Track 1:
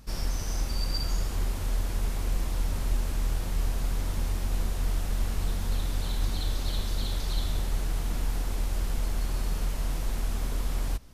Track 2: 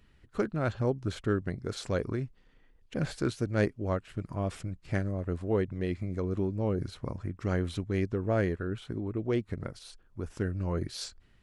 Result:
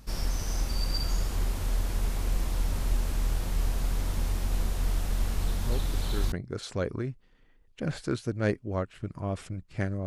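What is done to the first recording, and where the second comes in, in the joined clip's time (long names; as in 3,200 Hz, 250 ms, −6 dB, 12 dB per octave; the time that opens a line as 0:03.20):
track 1
0:05.61: mix in track 2 from 0:00.75 0.71 s −8.5 dB
0:06.32: continue with track 2 from 0:01.46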